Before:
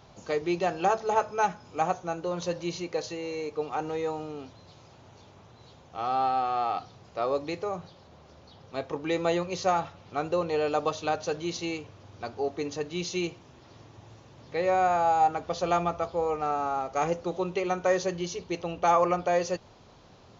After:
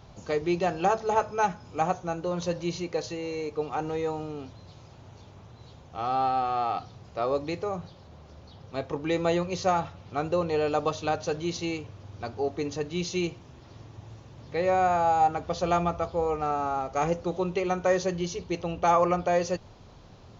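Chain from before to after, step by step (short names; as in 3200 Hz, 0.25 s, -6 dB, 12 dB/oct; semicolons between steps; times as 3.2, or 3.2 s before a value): low shelf 140 Hz +10.5 dB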